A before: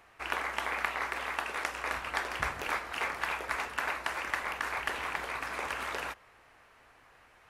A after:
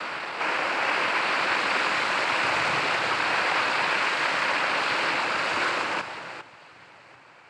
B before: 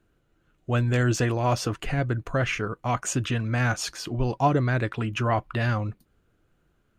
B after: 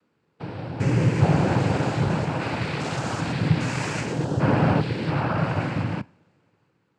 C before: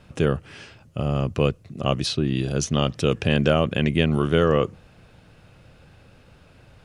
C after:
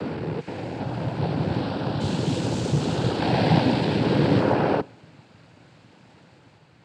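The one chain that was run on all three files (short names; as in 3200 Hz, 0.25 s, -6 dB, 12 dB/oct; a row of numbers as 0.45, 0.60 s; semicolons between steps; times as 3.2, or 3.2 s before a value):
stepped spectrum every 0.4 s; high shelf 4000 Hz -5 dB; echoes that change speed 0.47 s, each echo +2 st, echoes 3; noise vocoder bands 8; two-slope reverb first 0.44 s, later 2.4 s, from -20 dB, DRR 19.5 dB; match loudness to -24 LUFS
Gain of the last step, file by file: +11.5, +4.0, +0.5 dB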